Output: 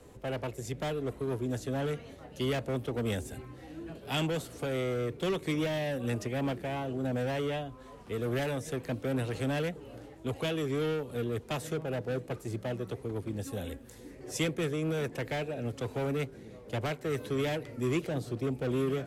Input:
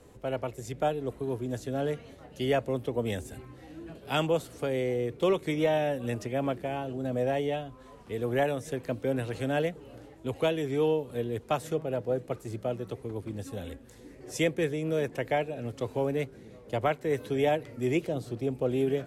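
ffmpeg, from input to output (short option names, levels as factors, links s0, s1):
-filter_complex "[0:a]asettb=1/sr,asplit=3[s0][s1][s2];[s0]atrim=end=13.434[s3];[s1]atrim=start=13.43:end=14.11,asetpts=PTS-STARTPTS,afade=t=in:d=0.004:c=qsin,afade=t=out:st=0.676:d=0.004:c=qsin,highshelf=f=11000:g=8.5[s4];[s2]atrim=start=14.106[s5];[s3][s4]acrossfade=d=0.004:c1=hsin:c2=qsin[s6];[s6][s5]acrossfade=d=0.004:c1=qsin:c2=hsin,acrossover=split=280|2500[s7][s8][s9];[s8]volume=53.1,asoftclip=hard,volume=0.0188[s10];[s7][s10][s9]amix=inputs=3:normalize=0,volume=1.12"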